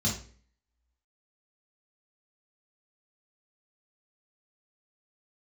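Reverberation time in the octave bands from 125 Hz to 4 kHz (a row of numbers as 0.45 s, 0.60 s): 0.55 s, 0.55 s, 0.50 s, 0.40 s, 0.45 s, 0.40 s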